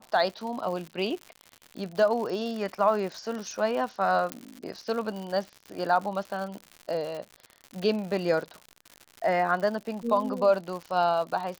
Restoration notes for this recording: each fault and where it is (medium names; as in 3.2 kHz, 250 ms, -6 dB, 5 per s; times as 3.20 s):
crackle 130 per s -34 dBFS
4.32 s: pop -14 dBFS